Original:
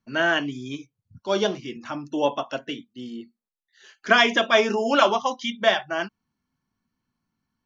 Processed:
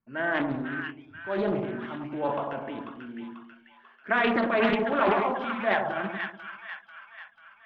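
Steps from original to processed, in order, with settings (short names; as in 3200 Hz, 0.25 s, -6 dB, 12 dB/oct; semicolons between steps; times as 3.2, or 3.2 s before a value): LPF 2200 Hz 24 dB/oct; transient shaper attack -2 dB, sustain +11 dB; split-band echo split 1200 Hz, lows 98 ms, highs 0.491 s, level -4.5 dB; Doppler distortion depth 0.41 ms; gain -6.5 dB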